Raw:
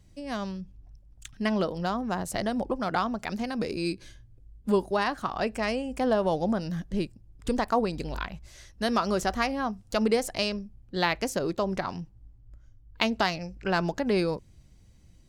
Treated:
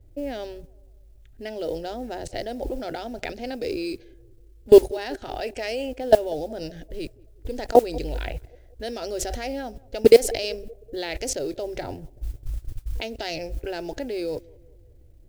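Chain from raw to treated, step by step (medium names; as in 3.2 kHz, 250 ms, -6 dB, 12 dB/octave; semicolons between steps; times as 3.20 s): level-controlled noise filter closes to 820 Hz, open at -23 dBFS; 5.40–5.99 s: bass shelf 400 Hz -9 dB; harmonic-percussive split percussive -4 dB; 11.83–13.01 s: tilt shelf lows +6.5 dB, about 1.4 kHz; level held to a coarse grid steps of 23 dB; static phaser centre 460 Hz, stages 4; modulation noise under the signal 28 dB; band-passed feedback delay 190 ms, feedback 51%, band-pass 430 Hz, level -23.5 dB; loudness maximiser +21 dB; trim -1 dB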